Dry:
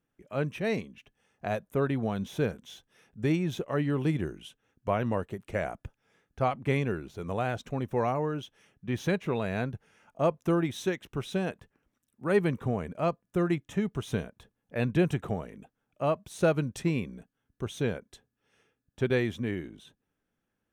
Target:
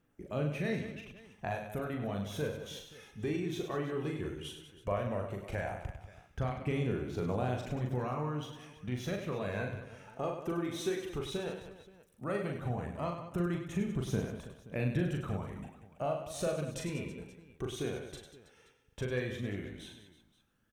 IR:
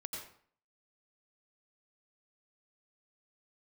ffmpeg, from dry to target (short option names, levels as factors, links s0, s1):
-filter_complex "[0:a]acompressor=threshold=0.00794:ratio=2.5,aphaser=in_gain=1:out_gain=1:delay=2.8:decay=0.42:speed=0.14:type=triangular,aecho=1:1:40|100|190|325|527.5:0.631|0.398|0.251|0.158|0.1,asplit=2[s0][s1];[1:a]atrim=start_sample=2205,asetrate=40131,aresample=44100[s2];[s1][s2]afir=irnorm=-1:irlink=0,volume=0.282[s3];[s0][s3]amix=inputs=2:normalize=0,volume=1.12"